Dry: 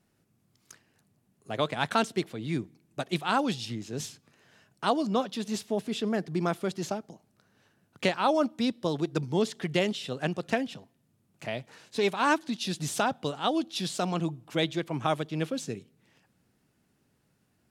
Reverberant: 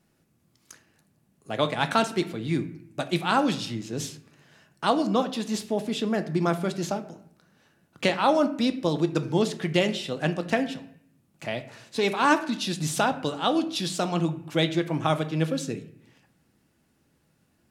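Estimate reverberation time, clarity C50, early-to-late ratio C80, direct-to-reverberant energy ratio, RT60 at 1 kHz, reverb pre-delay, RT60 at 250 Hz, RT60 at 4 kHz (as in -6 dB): 0.65 s, 13.5 dB, 16.5 dB, 8.0 dB, 0.65 s, 3 ms, 0.95 s, 0.45 s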